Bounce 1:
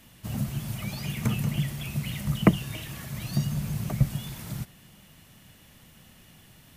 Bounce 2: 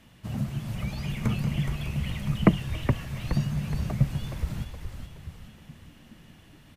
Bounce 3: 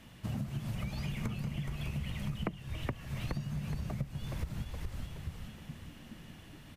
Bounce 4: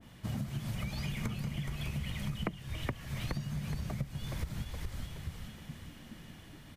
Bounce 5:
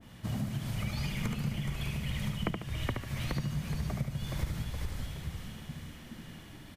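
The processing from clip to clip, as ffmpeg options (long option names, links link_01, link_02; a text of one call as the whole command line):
ffmpeg -i in.wav -filter_complex "[0:a]aemphasis=mode=reproduction:type=50kf,asplit=2[link_01][link_02];[link_02]asplit=6[link_03][link_04][link_05][link_06][link_07][link_08];[link_03]adelay=420,afreqshift=-72,volume=-6dB[link_09];[link_04]adelay=840,afreqshift=-144,volume=-12dB[link_10];[link_05]adelay=1260,afreqshift=-216,volume=-18dB[link_11];[link_06]adelay=1680,afreqshift=-288,volume=-24.1dB[link_12];[link_07]adelay=2100,afreqshift=-360,volume=-30.1dB[link_13];[link_08]adelay=2520,afreqshift=-432,volume=-36.1dB[link_14];[link_09][link_10][link_11][link_12][link_13][link_14]amix=inputs=6:normalize=0[link_15];[link_01][link_15]amix=inputs=2:normalize=0" out.wav
ffmpeg -i in.wav -af "acompressor=threshold=-34dB:ratio=10,volume=1dB" out.wav
ffmpeg -i in.wav -af "bandreject=frequency=2700:width=13,adynamicequalizer=threshold=0.00141:dfrequency=1500:dqfactor=0.7:tfrequency=1500:tqfactor=0.7:attack=5:release=100:ratio=0.375:range=2:mode=boostabove:tftype=highshelf" out.wav
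ffmpeg -i in.wav -af "aecho=1:1:73|146|219|292|365:0.562|0.214|0.0812|0.0309|0.0117,volume=1.5dB" out.wav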